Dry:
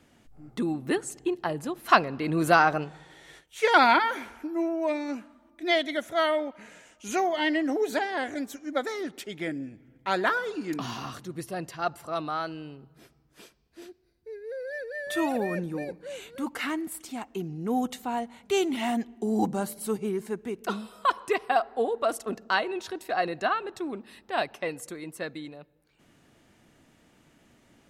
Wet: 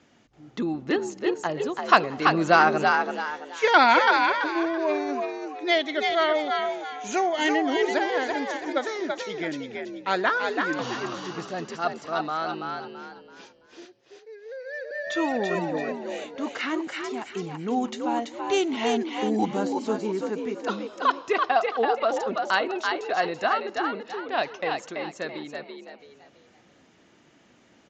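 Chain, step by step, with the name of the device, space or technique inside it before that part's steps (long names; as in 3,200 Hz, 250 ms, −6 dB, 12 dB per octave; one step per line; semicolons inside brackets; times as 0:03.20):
0:13.85–0:14.91: Bessel high-pass filter 530 Hz, order 4
echo with shifted repeats 333 ms, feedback 33%, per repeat +62 Hz, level −4 dB
Bluetooth headset (high-pass filter 170 Hz 6 dB per octave; downsampling to 16,000 Hz; level +2 dB; SBC 64 kbit/s 16,000 Hz)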